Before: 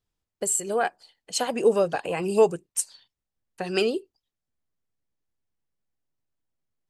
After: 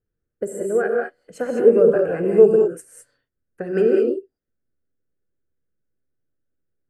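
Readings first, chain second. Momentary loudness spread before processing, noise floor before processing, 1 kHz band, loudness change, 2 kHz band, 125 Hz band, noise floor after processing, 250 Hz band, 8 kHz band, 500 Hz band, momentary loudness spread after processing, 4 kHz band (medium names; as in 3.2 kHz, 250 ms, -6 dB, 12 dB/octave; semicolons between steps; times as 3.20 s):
9 LU, under -85 dBFS, -4.5 dB, +7.5 dB, +1.5 dB, +5.5 dB, -81 dBFS, +7.5 dB, under -10 dB, +8.5 dB, 17 LU, under -15 dB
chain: FFT filter 210 Hz 0 dB, 490 Hz +4 dB, 920 Hz -18 dB, 1.5 kHz 0 dB, 3.7 kHz -29 dB, 12 kHz -16 dB; gated-style reverb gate 230 ms rising, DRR 0 dB; trim +3 dB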